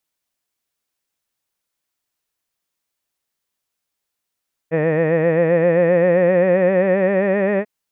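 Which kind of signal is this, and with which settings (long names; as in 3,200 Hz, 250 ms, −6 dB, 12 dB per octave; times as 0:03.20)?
vowel by formant synthesis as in head, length 2.94 s, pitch 156 Hz, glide +4.5 semitones, vibrato 7.6 Hz, vibrato depth 0.8 semitones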